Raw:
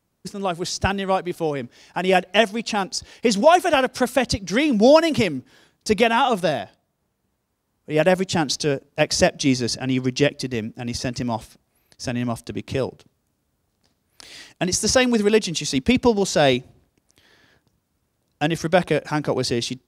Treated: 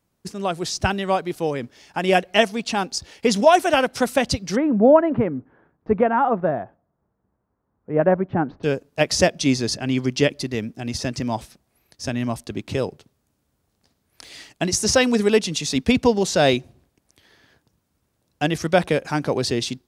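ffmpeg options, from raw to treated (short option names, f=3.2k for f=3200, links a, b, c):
-filter_complex "[0:a]asplit=3[a][b][c];[a]afade=t=out:st=4.55:d=0.02[d];[b]lowpass=f=1.5k:w=0.5412,lowpass=f=1.5k:w=1.3066,afade=t=in:st=4.55:d=0.02,afade=t=out:st=8.63:d=0.02[e];[c]afade=t=in:st=8.63:d=0.02[f];[d][e][f]amix=inputs=3:normalize=0"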